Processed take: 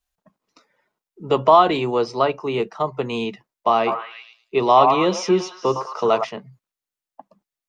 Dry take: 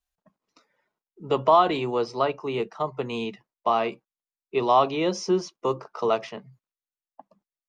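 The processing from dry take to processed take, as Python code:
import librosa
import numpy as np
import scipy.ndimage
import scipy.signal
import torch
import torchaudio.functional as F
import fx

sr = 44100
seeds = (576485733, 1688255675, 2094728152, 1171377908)

y = fx.echo_stepped(x, sr, ms=109, hz=900.0, octaves=0.7, feedback_pct=70, wet_db=-2.5, at=(3.86, 6.23), fade=0.02)
y = F.gain(torch.from_numpy(y), 5.0).numpy()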